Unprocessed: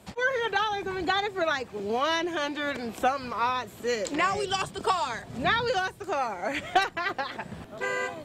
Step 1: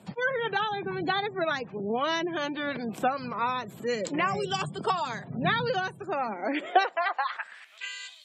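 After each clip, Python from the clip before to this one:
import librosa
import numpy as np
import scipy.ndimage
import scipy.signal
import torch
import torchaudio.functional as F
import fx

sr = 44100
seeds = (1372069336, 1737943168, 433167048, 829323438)

y = fx.filter_sweep_highpass(x, sr, from_hz=150.0, to_hz=3600.0, start_s=6.11, end_s=7.98, q=3.2)
y = fx.spec_gate(y, sr, threshold_db=-30, keep='strong')
y = y * librosa.db_to_amplitude(-2.0)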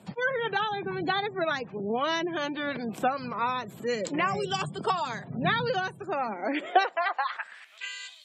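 y = x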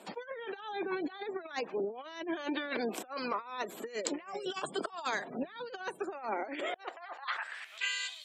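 y = scipy.signal.sosfilt(scipy.signal.butter(4, 290.0, 'highpass', fs=sr, output='sos'), x)
y = fx.over_compress(y, sr, threshold_db=-35.0, ratio=-0.5)
y = y * librosa.db_to_amplitude(-2.0)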